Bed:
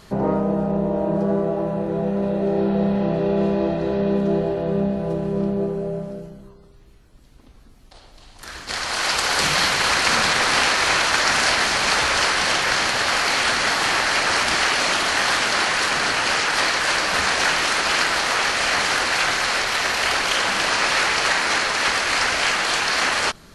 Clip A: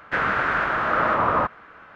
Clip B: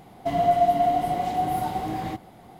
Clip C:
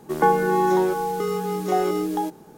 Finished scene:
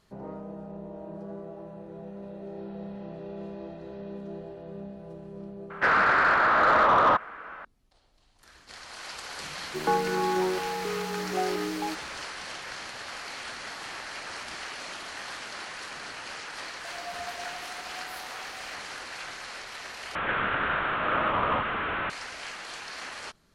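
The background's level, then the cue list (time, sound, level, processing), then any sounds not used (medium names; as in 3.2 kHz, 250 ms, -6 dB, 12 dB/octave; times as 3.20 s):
bed -19 dB
5.70 s: add A -3.5 dB + overdrive pedal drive 17 dB, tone 1.5 kHz, clips at -7 dBFS
9.65 s: add C -7.5 dB
16.59 s: add B -6.5 dB + Bessel high-pass 1.9 kHz
20.15 s: replace with A -6 dB + one-bit delta coder 16 kbps, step -18 dBFS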